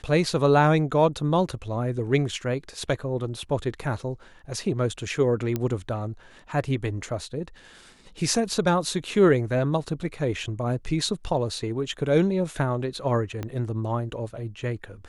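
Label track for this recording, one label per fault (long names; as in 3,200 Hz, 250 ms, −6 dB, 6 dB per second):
5.560000	5.560000	click −13 dBFS
13.430000	13.430000	click −18 dBFS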